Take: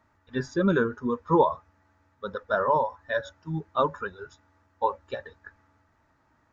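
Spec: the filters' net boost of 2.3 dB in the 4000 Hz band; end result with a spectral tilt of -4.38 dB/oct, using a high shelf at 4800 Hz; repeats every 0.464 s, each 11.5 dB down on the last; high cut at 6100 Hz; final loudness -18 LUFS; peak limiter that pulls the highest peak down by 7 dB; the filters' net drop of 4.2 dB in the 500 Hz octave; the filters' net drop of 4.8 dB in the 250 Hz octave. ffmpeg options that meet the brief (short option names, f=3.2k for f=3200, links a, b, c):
-af "lowpass=6.1k,equalizer=f=250:t=o:g=-6,equalizer=f=500:t=o:g=-3.5,equalizer=f=4k:t=o:g=6,highshelf=f=4.8k:g=-7,alimiter=limit=-18dB:level=0:latency=1,aecho=1:1:464|928|1392:0.266|0.0718|0.0194,volume=14.5dB"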